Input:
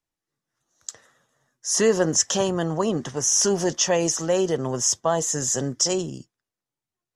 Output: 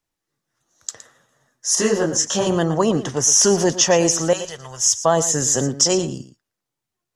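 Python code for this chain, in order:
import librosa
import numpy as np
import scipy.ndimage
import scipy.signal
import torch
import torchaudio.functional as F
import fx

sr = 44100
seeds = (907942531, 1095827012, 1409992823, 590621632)

y = fx.tone_stack(x, sr, knobs='10-0-10', at=(4.33, 5.05))
y = y + 10.0 ** (-14.0 / 20.0) * np.pad(y, (int(115 * sr / 1000.0), 0))[:len(y)]
y = fx.detune_double(y, sr, cents=42, at=(1.75, 2.47))
y = F.gain(torch.from_numpy(y), 5.5).numpy()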